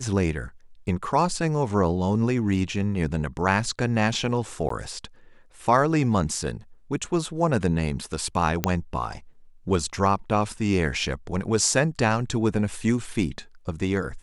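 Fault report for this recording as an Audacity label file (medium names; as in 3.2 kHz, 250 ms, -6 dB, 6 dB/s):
4.690000	4.700000	dropout 14 ms
8.640000	8.640000	pop -5 dBFS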